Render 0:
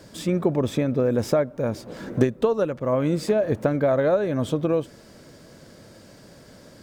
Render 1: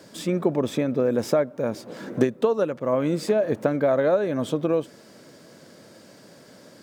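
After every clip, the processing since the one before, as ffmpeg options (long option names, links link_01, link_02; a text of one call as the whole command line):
ffmpeg -i in.wav -af "highpass=170" out.wav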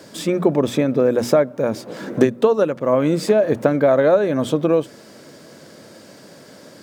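ffmpeg -i in.wav -af "bandreject=frequency=60:width_type=h:width=6,bandreject=frequency=120:width_type=h:width=6,bandreject=frequency=180:width_type=h:width=6,bandreject=frequency=240:width_type=h:width=6,volume=6dB" out.wav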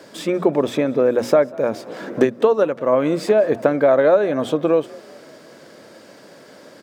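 ffmpeg -i in.wav -filter_complex "[0:a]bass=frequency=250:gain=-8,treble=frequency=4000:gain=-6,asplit=4[link_01][link_02][link_03][link_04];[link_02]adelay=193,afreqshift=45,volume=-23.5dB[link_05];[link_03]adelay=386,afreqshift=90,volume=-29dB[link_06];[link_04]adelay=579,afreqshift=135,volume=-34.5dB[link_07];[link_01][link_05][link_06][link_07]amix=inputs=4:normalize=0,volume=1dB" out.wav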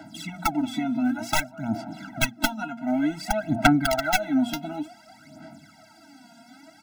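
ffmpeg -i in.wav -af "aeval=exprs='(mod(2*val(0)+1,2)-1)/2':channel_layout=same,aphaser=in_gain=1:out_gain=1:delay=4.3:decay=0.74:speed=0.55:type=sinusoidal,afftfilt=real='re*eq(mod(floor(b*sr/1024/320),2),0)':imag='im*eq(mod(floor(b*sr/1024/320),2),0)':win_size=1024:overlap=0.75,volume=-5.5dB" out.wav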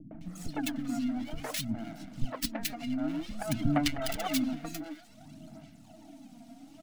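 ffmpeg -i in.wav -filter_complex "[0:a]acrossover=split=650|6800[link_01][link_02][link_03];[link_01]acompressor=mode=upward:threshold=-35dB:ratio=2.5[link_04];[link_02]aeval=exprs='abs(val(0))':channel_layout=same[link_05];[link_04][link_05][link_03]amix=inputs=3:normalize=0,acrossover=split=300|1800[link_06][link_07][link_08];[link_07]adelay=110[link_09];[link_08]adelay=210[link_10];[link_06][link_09][link_10]amix=inputs=3:normalize=0,volume=-4.5dB" out.wav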